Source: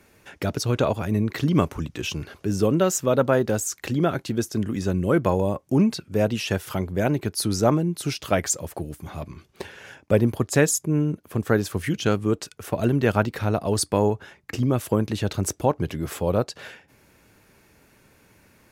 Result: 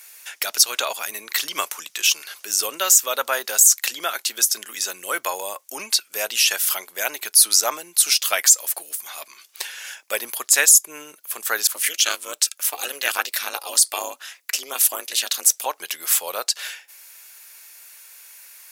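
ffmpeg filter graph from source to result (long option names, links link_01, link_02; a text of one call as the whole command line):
ffmpeg -i in.wav -filter_complex "[0:a]asettb=1/sr,asplit=3[link_01][link_02][link_03];[link_01]atrim=end=11.674[link_04];[link_02]atrim=start=11.67:end=15.66,asetpts=PTS-STARTPTS,afade=type=in:duration=0.004:curve=qsin,afade=type=out:start_time=3.986:duration=0.004:curve=qsin,aeval=exprs='val(0)*sin(2*PI*140*n/s)':channel_layout=same,adynamicequalizer=threshold=0.00891:dfrequency=1800:dqfactor=0.7:tfrequency=1800:tqfactor=0.7:attack=5:release=100:ratio=0.375:range=2:mode=boostabove:tftype=highshelf[link_05];[link_03]atrim=start=15.656[link_06];[link_04][link_05]acrossfade=duration=0.004:curve1=hsin:curve2=qsin[link_07];[link_07][link_06]acrossfade=duration=0.004:curve1=qsin:curve2=hsin,highpass=630,aderivative,alimiter=level_in=19.5dB:limit=-1dB:release=50:level=0:latency=1,volume=-1dB" out.wav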